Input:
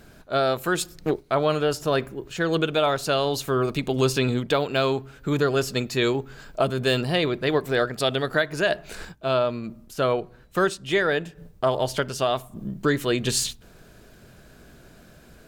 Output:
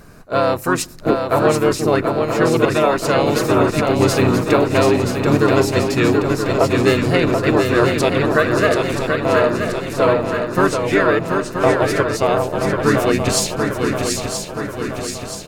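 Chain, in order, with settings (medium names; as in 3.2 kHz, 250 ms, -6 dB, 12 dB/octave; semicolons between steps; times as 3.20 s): harmony voices -5 st -3 dB; peaking EQ 3.3 kHz -10.5 dB 0.37 oct; shuffle delay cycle 977 ms, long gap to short 3:1, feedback 56%, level -5 dB; trim +4.5 dB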